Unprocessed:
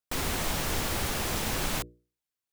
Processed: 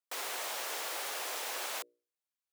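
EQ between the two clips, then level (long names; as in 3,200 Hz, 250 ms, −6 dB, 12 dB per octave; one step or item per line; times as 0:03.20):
high-pass filter 470 Hz 24 dB per octave
−5.5 dB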